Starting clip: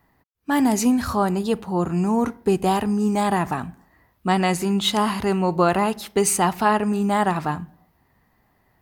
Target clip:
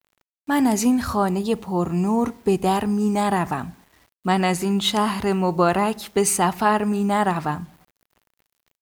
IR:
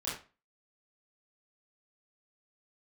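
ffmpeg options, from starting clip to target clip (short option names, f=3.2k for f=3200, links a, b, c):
-filter_complex "[0:a]asettb=1/sr,asplit=3[a][b][c];[a]atrim=end=1.274[d];[b]atrim=start=1.27:end=2.6,asetpts=PTS-STARTPTS,afade=t=in:d=0.004:c=qsin,afade=t=out:st=1.326:d=0.004:c=qsin,bandreject=f=1.5k:w=5.5[e];[c]atrim=start=2.596[f];[d][e]acrossfade=d=0.004:c1=hsin:c2=qsin[g];[g][f]acrossfade=d=0.004:c1=qsin:c2=hsin,acrusher=bits=8:mix=0:aa=0.000001"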